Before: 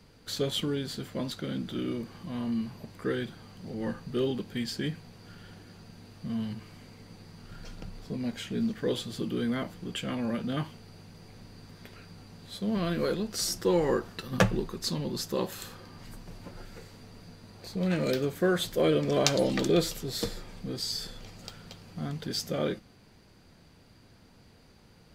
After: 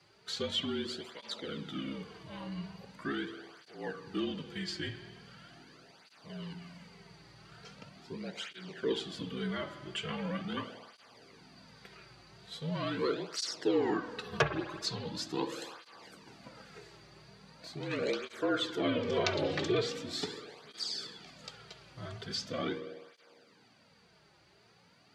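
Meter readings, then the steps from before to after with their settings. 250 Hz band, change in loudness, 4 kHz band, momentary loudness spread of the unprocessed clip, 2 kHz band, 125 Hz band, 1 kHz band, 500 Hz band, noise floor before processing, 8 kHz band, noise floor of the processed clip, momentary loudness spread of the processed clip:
−7.0 dB, −5.0 dB, −2.5 dB, 23 LU, −1.5 dB, −8.5 dB, −2.0 dB, −5.5 dB, −57 dBFS, −9.0 dB, −64 dBFS, 22 LU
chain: low-shelf EQ 380 Hz −12 dB
treble cut that deepens with the level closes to 810 Hz, closed at −18.5 dBFS
high-frequency loss of the air 56 metres
mains-hum notches 60/120/180 Hz
spring reverb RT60 1.7 s, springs 50 ms, chirp 20 ms, DRR 8.5 dB
frequency shifter −45 Hz
high-pass filter 96 Hz 12 dB per octave
through-zero flanger with one copy inverted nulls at 0.41 Hz, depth 4.6 ms
level +3 dB

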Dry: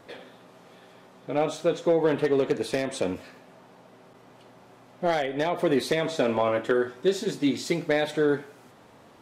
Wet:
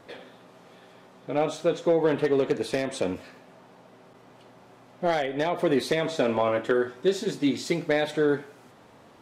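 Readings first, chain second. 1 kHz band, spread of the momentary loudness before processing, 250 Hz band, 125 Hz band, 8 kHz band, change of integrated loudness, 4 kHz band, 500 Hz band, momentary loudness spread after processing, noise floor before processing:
0.0 dB, 7 LU, 0.0 dB, 0.0 dB, −1.0 dB, 0.0 dB, −0.5 dB, 0.0 dB, 8 LU, −53 dBFS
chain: high-shelf EQ 11,000 Hz −4 dB

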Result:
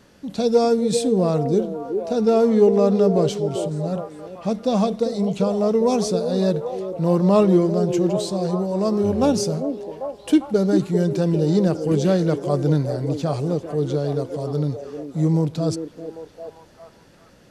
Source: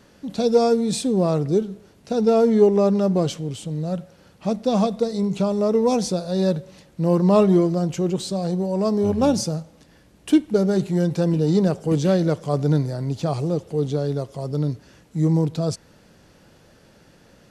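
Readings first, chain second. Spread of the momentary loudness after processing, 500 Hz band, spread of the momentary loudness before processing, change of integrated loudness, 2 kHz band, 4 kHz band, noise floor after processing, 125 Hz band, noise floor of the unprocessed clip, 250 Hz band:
12 LU, +1.5 dB, 11 LU, +0.5 dB, 0.0 dB, 0.0 dB, −51 dBFS, 0.0 dB, −53 dBFS, +0.5 dB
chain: echo through a band-pass that steps 398 ms, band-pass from 370 Hz, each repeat 0.7 octaves, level −4.5 dB

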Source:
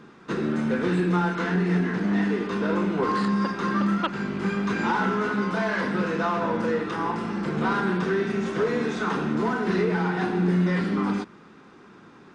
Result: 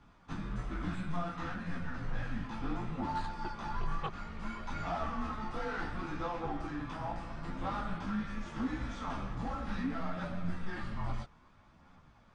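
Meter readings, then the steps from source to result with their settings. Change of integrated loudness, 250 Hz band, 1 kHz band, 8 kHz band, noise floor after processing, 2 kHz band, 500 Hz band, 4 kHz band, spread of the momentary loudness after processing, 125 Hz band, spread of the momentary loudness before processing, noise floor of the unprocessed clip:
−14.0 dB, −15.5 dB, −11.0 dB, can't be measured, −61 dBFS, −15.0 dB, −18.0 dB, −12.0 dB, 4 LU, −12.0 dB, 5 LU, −50 dBFS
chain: multi-voice chorus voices 2, 0.63 Hz, delay 16 ms, depth 4.9 ms
frequency shifter −180 Hz
level −8.5 dB

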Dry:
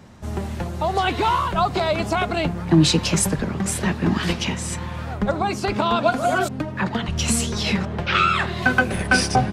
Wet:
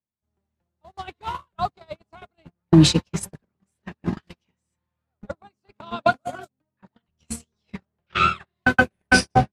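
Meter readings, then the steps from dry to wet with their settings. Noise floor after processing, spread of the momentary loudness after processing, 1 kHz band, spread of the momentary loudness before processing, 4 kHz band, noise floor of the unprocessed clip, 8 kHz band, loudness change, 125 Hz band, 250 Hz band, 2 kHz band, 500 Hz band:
−82 dBFS, 22 LU, −4.5 dB, 8 LU, −4.5 dB, −31 dBFS, −7.5 dB, 0.0 dB, −3.0 dB, −2.0 dB, −1.5 dB, −5.5 dB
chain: noise gate −16 dBFS, range −54 dB
level +2.5 dB

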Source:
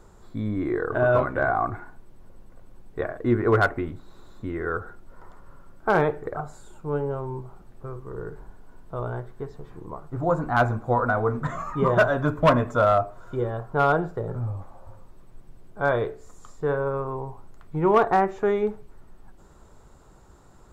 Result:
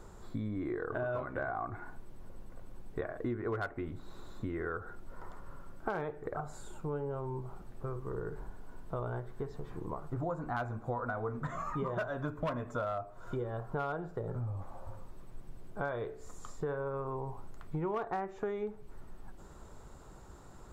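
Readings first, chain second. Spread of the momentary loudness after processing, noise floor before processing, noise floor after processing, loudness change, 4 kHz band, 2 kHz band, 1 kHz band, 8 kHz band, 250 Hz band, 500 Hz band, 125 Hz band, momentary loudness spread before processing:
19 LU, −51 dBFS, −52 dBFS, −14.0 dB, −15.0 dB, −14.5 dB, −14.0 dB, can't be measured, −11.5 dB, −13.5 dB, −10.5 dB, 18 LU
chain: downward compressor 6 to 1, threshold −34 dBFS, peak gain reduction 19 dB

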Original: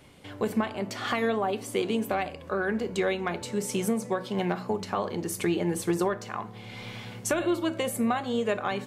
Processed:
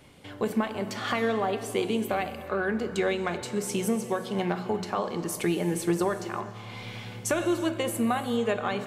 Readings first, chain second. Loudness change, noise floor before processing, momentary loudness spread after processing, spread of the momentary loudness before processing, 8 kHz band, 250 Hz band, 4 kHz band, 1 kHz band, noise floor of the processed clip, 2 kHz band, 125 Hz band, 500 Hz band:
+0.5 dB, −44 dBFS, 7 LU, 8 LU, +0.5 dB, +0.5 dB, +0.5 dB, +0.5 dB, −42 dBFS, +0.5 dB, +1.0 dB, +0.5 dB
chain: reverb whose tail is shaped and stops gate 420 ms flat, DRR 11 dB

